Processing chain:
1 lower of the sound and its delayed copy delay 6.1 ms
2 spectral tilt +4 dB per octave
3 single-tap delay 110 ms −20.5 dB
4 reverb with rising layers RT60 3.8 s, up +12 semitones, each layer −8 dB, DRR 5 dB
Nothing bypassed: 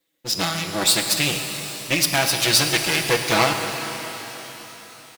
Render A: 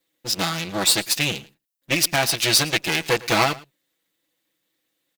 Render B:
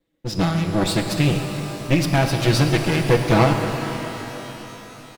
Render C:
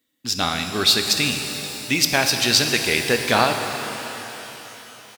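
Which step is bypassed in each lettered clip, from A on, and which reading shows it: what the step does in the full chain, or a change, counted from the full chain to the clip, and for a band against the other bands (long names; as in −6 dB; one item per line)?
4, change in momentary loudness spread −9 LU
2, 8 kHz band −13.5 dB
1, 8 kHz band −2.5 dB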